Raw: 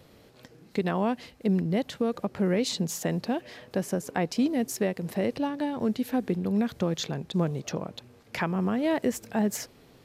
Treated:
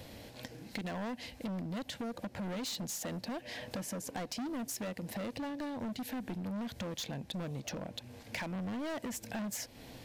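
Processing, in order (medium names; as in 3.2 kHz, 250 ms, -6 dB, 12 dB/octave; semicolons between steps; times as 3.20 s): graphic EQ with 31 bands 160 Hz -8 dB, 400 Hz -12 dB, 1.25 kHz -11 dB; hard clipper -32 dBFS, distortion -7 dB; compression 6:1, threshold -46 dBFS, peak gain reduction 11.5 dB; trim +7.5 dB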